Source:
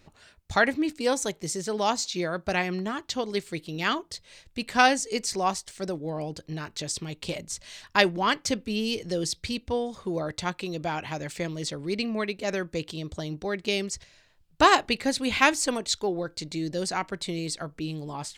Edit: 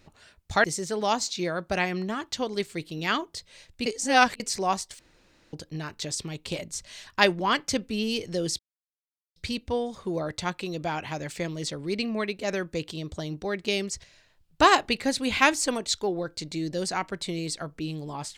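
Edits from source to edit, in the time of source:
0.64–1.41 cut
4.63–5.17 reverse
5.76–6.3 room tone
9.36 insert silence 0.77 s

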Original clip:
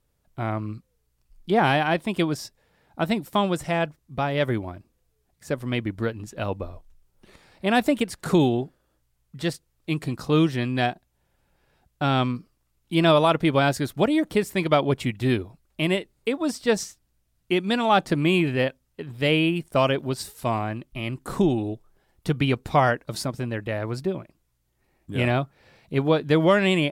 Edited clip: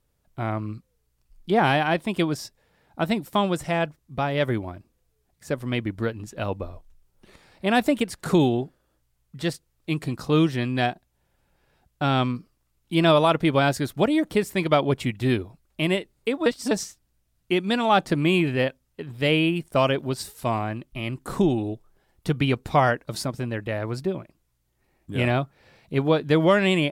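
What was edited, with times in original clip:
16.46–16.71 reverse

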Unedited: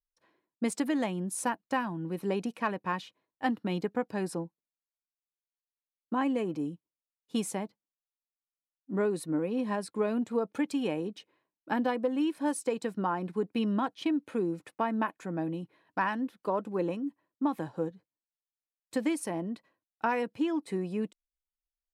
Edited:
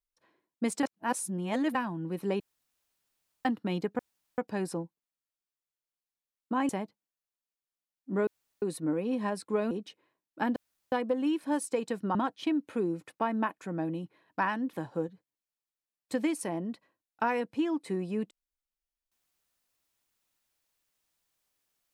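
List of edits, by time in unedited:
0.83–1.75 reverse
2.4–3.45 room tone
3.99 insert room tone 0.39 s
6.3–7.5 cut
9.08 insert room tone 0.35 s
10.17–11.01 cut
11.86 insert room tone 0.36 s
13.09–13.74 cut
16.32–17.55 cut

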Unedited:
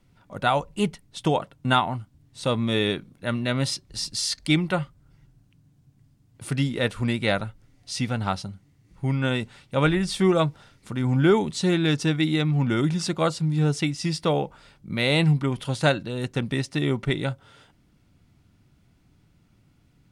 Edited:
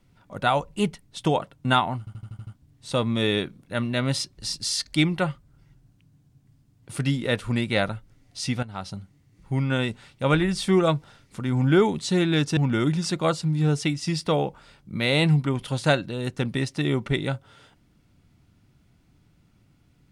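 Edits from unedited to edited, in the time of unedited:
1.99 stutter 0.08 s, 7 plays
8.15–8.47 fade in quadratic, from -13.5 dB
12.09–12.54 cut

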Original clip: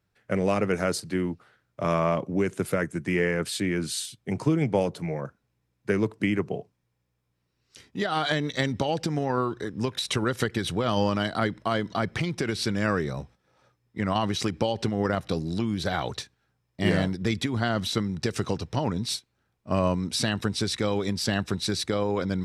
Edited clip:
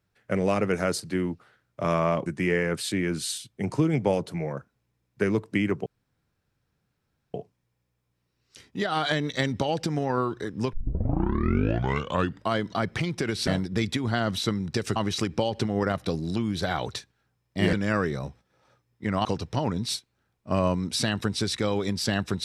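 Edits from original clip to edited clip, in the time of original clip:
2.26–2.94 cut
6.54 insert room tone 1.48 s
9.93 tape start 1.79 s
12.67–14.19 swap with 16.96–18.45

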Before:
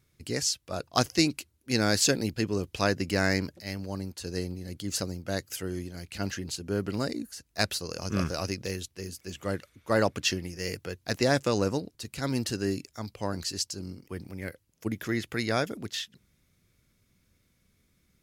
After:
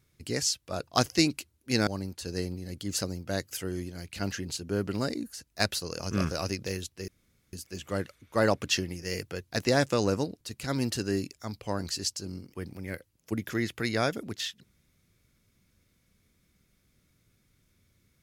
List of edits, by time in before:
1.87–3.86 cut
9.07 insert room tone 0.45 s

